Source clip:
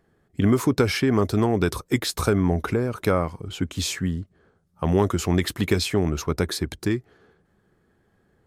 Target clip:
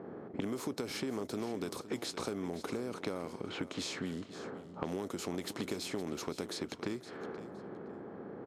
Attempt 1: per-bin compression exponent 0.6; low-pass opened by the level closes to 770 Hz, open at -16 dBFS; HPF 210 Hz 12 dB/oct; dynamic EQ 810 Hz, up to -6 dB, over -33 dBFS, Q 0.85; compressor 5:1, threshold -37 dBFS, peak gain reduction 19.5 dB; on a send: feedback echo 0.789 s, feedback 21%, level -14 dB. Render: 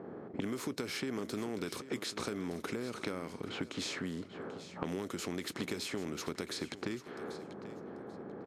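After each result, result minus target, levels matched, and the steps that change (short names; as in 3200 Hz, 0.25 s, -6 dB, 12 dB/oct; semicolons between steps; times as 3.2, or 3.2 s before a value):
echo 0.274 s late; 2000 Hz band +2.5 dB
change: feedback echo 0.515 s, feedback 21%, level -14 dB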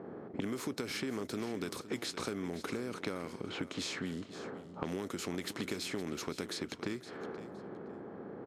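2000 Hz band +2.5 dB
change: dynamic EQ 1700 Hz, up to -6 dB, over -33 dBFS, Q 0.85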